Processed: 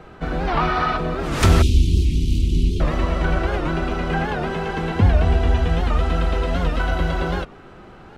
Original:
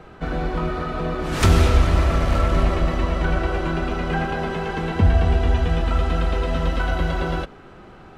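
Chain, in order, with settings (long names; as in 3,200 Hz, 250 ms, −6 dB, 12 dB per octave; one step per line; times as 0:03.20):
0:00.48–0:00.97: gain on a spectral selection 660–6,100 Hz +9 dB
0:01.62–0:02.81: inverse Chebyshev band-stop filter 550–1,800 Hz, stop band 40 dB
wow of a warped record 78 rpm, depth 160 cents
level +1 dB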